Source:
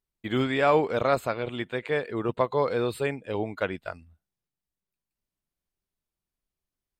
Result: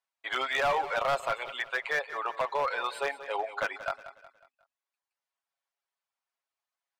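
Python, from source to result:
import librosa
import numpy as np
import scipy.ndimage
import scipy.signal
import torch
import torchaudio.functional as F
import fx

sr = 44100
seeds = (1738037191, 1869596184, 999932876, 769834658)

p1 = scipy.signal.sosfilt(scipy.signal.butter(2, 9400.0, 'lowpass', fs=sr, output='sos'), x)
p2 = fx.dereverb_blind(p1, sr, rt60_s=0.6)
p3 = scipy.signal.sosfilt(scipy.signal.butter(4, 720.0, 'highpass', fs=sr, output='sos'), p2)
p4 = fx.high_shelf(p3, sr, hz=2500.0, db=-11.0)
p5 = p4 + 0.69 * np.pad(p4, (int(7.3 * sr / 1000.0), 0))[:len(p4)]
p6 = fx.over_compress(p5, sr, threshold_db=-34.0, ratio=-1.0)
p7 = p5 + F.gain(torch.from_numpy(p6), -0.5).numpy()
p8 = np.clip(10.0 ** (22.5 / 20.0) * p7, -1.0, 1.0) / 10.0 ** (22.5 / 20.0)
y = fx.echo_feedback(p8, sr, ms=182, feedback_pct=42, wet_db=-14)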